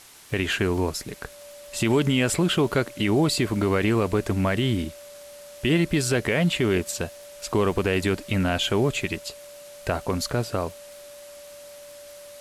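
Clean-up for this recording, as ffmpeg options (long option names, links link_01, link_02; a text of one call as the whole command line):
ffmpeg -i in.wav -af "adeclick=threshold=4,bandreject=frequency=580:width=30,afwtdn=0.0045" out.wav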